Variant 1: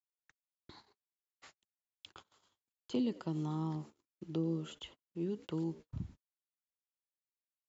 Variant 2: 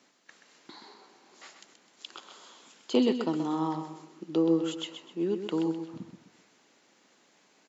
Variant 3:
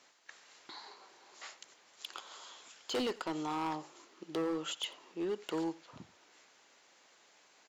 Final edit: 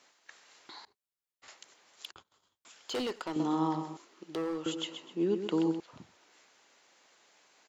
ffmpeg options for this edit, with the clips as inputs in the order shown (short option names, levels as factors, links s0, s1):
-filter_complex "[0:a]asplit=2[s0][s1];[1:a]asplit=2[s2][s3];[2:a]asplit=5[s4][s5][s6][s7][s8];[s4]atrim=end=0.852[s9];[s0]atrim=start=0.848:end=1.482[s10];[s5]atrim=start=1.478:end=2.112[s11];[s1]atrim=start=2.108:end=2.652[s12];[s6]atrim=start=2.648:end=3.362[s13];[s2]atrim=start=3.358:end=3.972[s14];[s7]atrim=start=3.968:end=4.662[s15];[s3]atrim=start=4.658:end=5.802[s16];[s8]atrim=start=5.798[s17];[s9][s10]acrossfade=d=0.004:c1=hsin:c2=hsin[s18];[s18][s11]acrossfade=d=0.004:c1=hsin:c2=hsin[s19];[s19][s12]acrossfade=d=0.004:c1=hsin:c2=hsin[s20];[s20][s13]acrossfade=d=0.004:c1=hsin:c2=hsin[s21];[s21][s14]acrossfade=d=0.004:c1=hsin:c2=hsin[s22];[s22][s15]acrossfade=d=0.004:c1=hsin:c2=hsin[s23];[s23][s16]acrossfade=d=0.004:c1=hsin:c2=hsin[s24];[s24][s17]acrossfade=d=0.004:c1=hsin:c2=hsin"